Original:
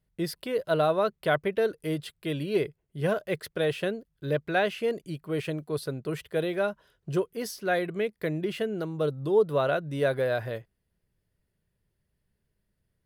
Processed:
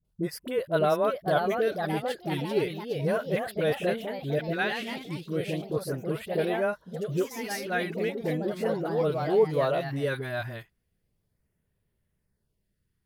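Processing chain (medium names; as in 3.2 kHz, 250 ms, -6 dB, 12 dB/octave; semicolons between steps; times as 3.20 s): LFO notch sine 0.36 Hz 470–5800 Hz; phase dispersion highs, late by 48 ms, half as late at 580 Hz; ever faster or slower copies 621 ms, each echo +2 st, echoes 3, each echo -6 dB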